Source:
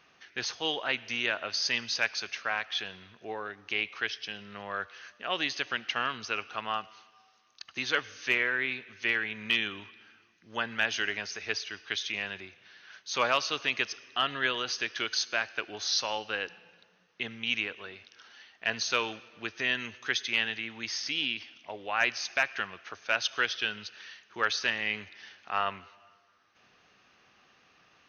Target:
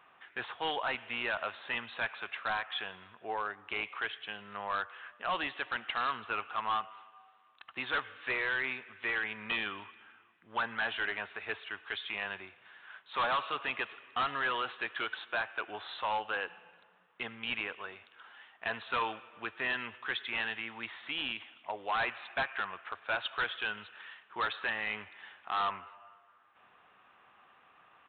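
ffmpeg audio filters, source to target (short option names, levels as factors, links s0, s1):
-af "equalizer=f=1000:w=0.87:g=13,aresample=8000,volume=10.6,asoftclip=hard,volume=0.0944,aresample=44100,volume=0.473"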